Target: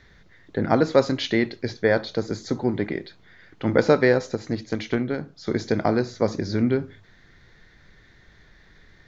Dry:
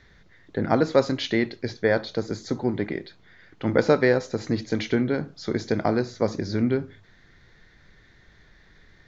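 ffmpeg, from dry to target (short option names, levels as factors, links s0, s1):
-filter_complex "[0:a]asettb=1/sr,asplit=3[s0][s1][s2];[s0]atrim=end=4.354[s3];[s1]atrim=start=4.35:end=5.47,asetpts=PTS-STARTPTS,afade=t=in:d=0.004:c=qsin,afade=t=out:st=1.116:d=0.004:c=qsin,aeval=exprs='0.376*(cos(1*acos(clip(val(0)/0.376,-1,1)))-cos(1*PI/2))+0.0531*(cos(3*acos(clip(val(0)/0.376,-1,1)))-cos(3*PI/2))':c=same[s4];[s2]atrim=start=5.466[s5];[s3][s4]acrossfade=d=0.004:c1=hsin:c2=qsin[s6];[s6][s5]acrossfade=d=0.004:c1=qsin:c2=hsin,volume=1.19"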